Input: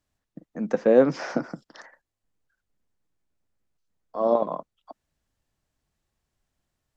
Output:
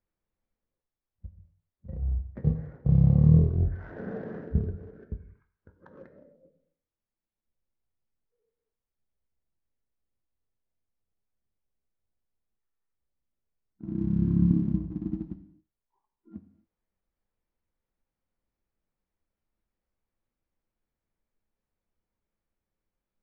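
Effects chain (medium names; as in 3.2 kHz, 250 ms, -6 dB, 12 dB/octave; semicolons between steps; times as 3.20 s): treble shelf 5.4 kHz -11 dB; in parallel at -7 dB: crossover distortion -42.5 dBFS; on the sum: wide varispeed 0.3×; gated-style reverb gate 290 ms falling, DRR 9 dB; trim -5.5 dB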